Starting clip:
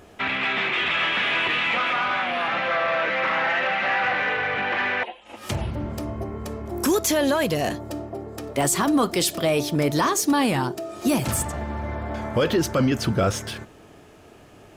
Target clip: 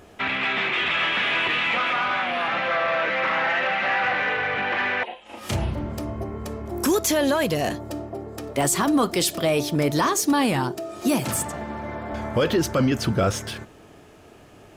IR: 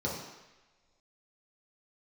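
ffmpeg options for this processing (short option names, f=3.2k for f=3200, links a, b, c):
-filter_complex "[0:a]asettb=1/sr,asplit=3[a][b][c];[a]atrim=end=5.074[d];[b]atrim=start=5.07:end=5.81,asetpts=PTS-STARTPTS,afade=t=in:d=0.004:c=qsin,afade=t=out:st=0.736:d=0.004:c=qsin,asplit=2[e][f];[f]adelay=33,volume=-4dB[g];[e][g]amix=inputs=2:normalize=0,atrim=end_sample=32634[h];[c]atrim=start=5.806[i];[d][h]acrossfade=d=0.004:c1=hsin:c2=qsin[j];[j][i]acrossfade=d=0.004:c1=qsin:c2=hsin,asettb=1/sr,asplit=3[k][l][m];[k]atrim=end=11.044[n];[l]atrim=start=11.04:end=12.13,asetpts=PTS-STARTPTS,afade=t=in:d=0.004:c=qsin,afade=t=out:st=1.086:d=0.004:c=qsin,highpass=130[o];[m]atrim=start=12.126[p];[n][o]acrossfade=d=0.004:c1=hsin:c2=qsin[q];[q][p]acrossfade=d=0.004:c1=qsin:c2=hsin"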